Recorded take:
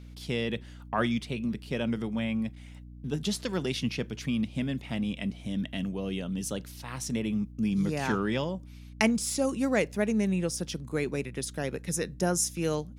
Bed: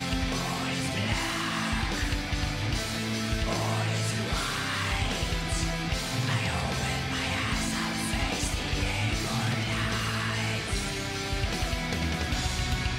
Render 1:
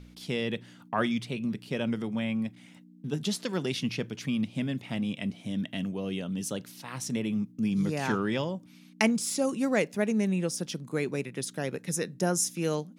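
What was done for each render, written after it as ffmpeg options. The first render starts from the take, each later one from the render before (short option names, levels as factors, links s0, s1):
-af "bandreject=f=60:t=h:w=4,bandreject=f=120:t=h:w=4"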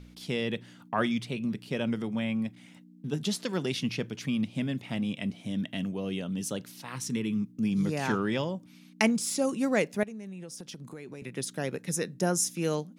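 -filter_complex "[0:a]asettb=1/sr,asplit=3[s0][s1][s2];[s0]atrim=end=6.954[s3];[s1]atrim=start=6.95:end=7.57,asetpts=PTS-STARTPTS,afade=t=in:d=0.004:c=qsin,afade=t=out:st=0.616:d=0.004:c=qsin,asuperstop=centerf=660:order=4:qfactor=1.6[s4];[s2]atrim=start=7.566[s5];[s3][s4]acrossfade=d=0.004:c1=hsin:c2=qsin[s6];[s6][s5]acrossfade=d=0.004:c1=qsin:c2=hsin,asettb=1/sr,asplit=3[s7][s8][s9];[s7]atrim=end=10.034[s10];[s8]atrim=start=10.03:end=11.22,asetpts=PTS-STARTPTS,afade=t=in:d=0.004:c=qsin,afade=t=out:st=1.186:d=0.004:c=qsin,acompressor=threshold=0.0126:ratio=12:attack=3.2:release=140:knee=1:detection=peak[s11];[s9]atrim=start=11.216[s12];[s10][s11]acrossfade=d=0.004:c1=hsin:c2=qsin[s13];[s13][s12]acrossfade=d=0.004:c1=qsin:c2=hsin"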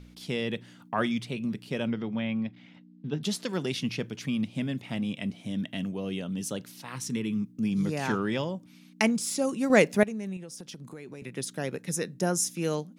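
-filter_complex "[0:a]asettb=1/sr,asplit=3[s0][s1][s2];[s0]atrim=end=1.874[s3];[s1]atrim=start=1.87:end=3.23,asetpts=PTS-STARTPTS,afade=t=in:d=0.004:c=qsin,afade=t=out:st=1.356:d=0.004:c=qsin,lowpass=f=4600:w=0.5412,lowpass=f=4600:w=1.3066[s4];[s2]atrim=start=3.226[s5];[s3][s4]acrossfade=d=0.004:c1=hsin:c2=qsin[s6];[s6][s5]acrossfade=d=0.004:c1=qsin:c2=hsin,asplit=3[s7][s8][s9];[s7]atrim=end=9.702[s10];[s8]atrim=start=9.698:end=10.372,asetpts=PTS-STARTPTS,volume=2.11[s11];[s9]atrim=start=10.368[s12];[s10][s11]acrossfade=d=0.004:c1=hsin:c2=hsin[s13];[s13][s12]acrossfade=d=0.004:c1=hsin:c2=hsin"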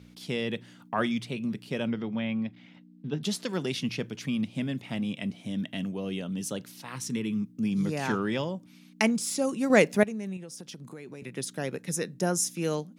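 -af "highpass=84"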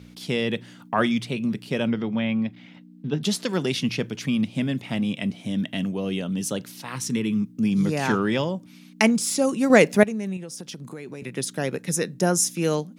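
-af "volume=2,alimiter=limit=0.794:level=0:latency=1"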